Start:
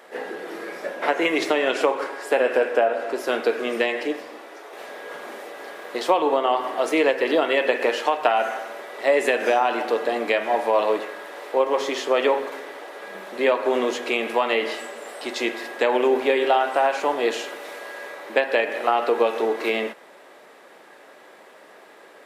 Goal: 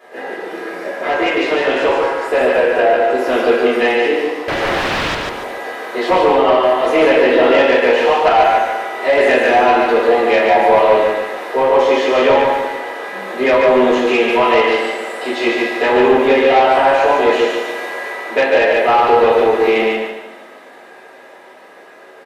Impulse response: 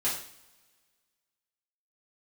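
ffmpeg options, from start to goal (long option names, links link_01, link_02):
-filter_complex "[1:a]atrim=start_sample=2205[link_01];[0:a][link_01]afir=irnorm=-1:irlink=0,asettb=1/sr,asplit=3[link_02][link_03][link_04];[link_02]atrim=end=4.484[link_05];[link_03]atrim=start=4.48:end=5.15,asetpts=PTS-STARTPTS,afade=type=in:duration=0.004:curve=qsin,afade=type=out:start_time=0.666:duration=0.004:curve=qsin,aeval=exprs='0.141*sin(PI/2*6.31*val(0)/0.141)':channel_layout=same[link_06];[link_04]atrim=start=5.146[link_07];[link_05][link_06]acrossfade=duration=0.004:curve1=hsin:curve2=qsin[link_08];[link_08][link_07]acrossfade=duration=0.004:curve1=qsin:curve2=hsin,highshelf=frequency=3700:gain=-6,acrossover=split=4200[link_09][link_10];[link_10]acompressor=threshold=-42dB:ratio=4:attack=1:release=60[link_11];[link_09][link_11]amix=inputs=2:normalize=0,asoftclip=type=tanh:threshold=-9dB,dynaudnorm=framelen=400:gausssize=11:maxgain=4dB,aecho=1:1:145|290|435|580:0.668|0.221|0.0728|0.024,volume=-1dB"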